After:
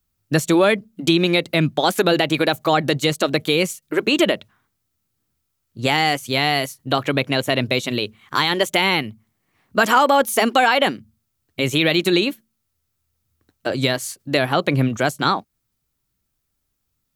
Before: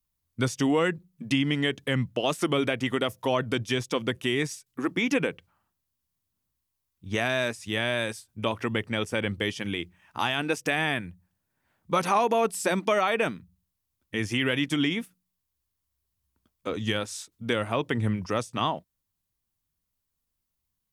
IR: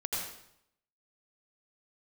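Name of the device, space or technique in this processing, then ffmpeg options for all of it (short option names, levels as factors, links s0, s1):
nightcore: -af "asetrate=53802,aresample=44100,volume=2.66"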